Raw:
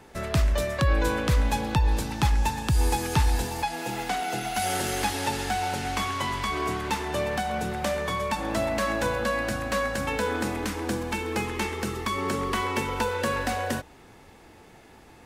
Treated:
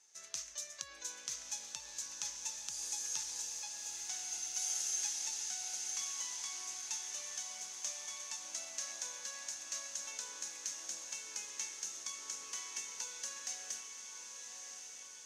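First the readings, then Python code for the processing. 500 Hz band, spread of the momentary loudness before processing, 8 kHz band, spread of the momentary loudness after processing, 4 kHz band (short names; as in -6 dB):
-32.5 dB, 5 LU, +1.5 dB, 7 LU, -9.5 dB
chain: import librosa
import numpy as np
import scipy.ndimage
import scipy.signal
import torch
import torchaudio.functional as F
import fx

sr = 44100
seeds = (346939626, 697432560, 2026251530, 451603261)

y = fx.bandpass_q(x, sr, hz=6300.0, q=7.8)
y = fx.echo_diffused(y, sr, ms=1162, feedback_pct=63, wet_db=-6.0)
y = y * librosa.db_to_amplitude(6.0)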